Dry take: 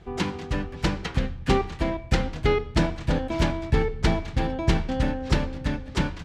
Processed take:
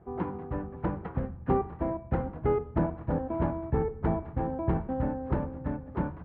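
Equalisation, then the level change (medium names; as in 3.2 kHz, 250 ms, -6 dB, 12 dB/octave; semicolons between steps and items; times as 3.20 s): high-pass 61 Hz; four-pole ladder low-pass 1.4 kHz, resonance 20%; hum notches 50/100/150/200 Hz; +1.0 dB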